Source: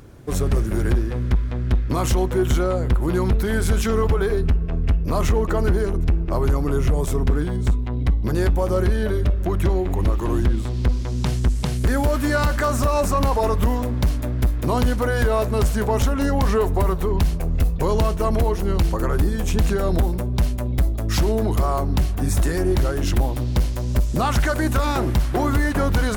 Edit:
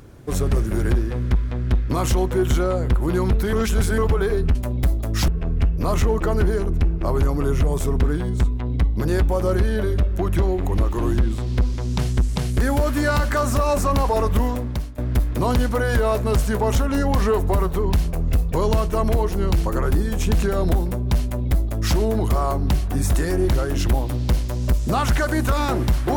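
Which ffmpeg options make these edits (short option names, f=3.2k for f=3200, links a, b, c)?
-filter_complex "[0:a]asplit=6[a][b][c][d][e][f];[a]atrim=end=3.532[g];[b]atrim=start=3.528:end=3.982,asetpts=PTS-STARTPTS,areverse[h];[c]atrim=start=3.978:end=4.552[i];[d]atrim=start=20.498:end=21.232[j];[e]atrim=start=4.548:end=14.25,asetpts=PTS-STARTPTS,afade=t=out:st=9.212:d=0.49:silence=0.125893[k];[f]atrim=start=14.25,asetpts=PTS-STARTPTS,afade=t=in:d=0.004:c=hsin:silence=0.125893[l];[g][h]acrossfade=d=0.004:c1=hsin:c2=hsin[m];[m][i]acrossfade=d=0.004:c1=hsin:c2=hsin[n];[n][j]acrossfade=d=0.004:c1=hsin:c2=hsin[o];[k][l]concat=n=2:v=0:a=1[p];[o][p]acrossfade=d=0.004:c1=hsin:c2=hsin"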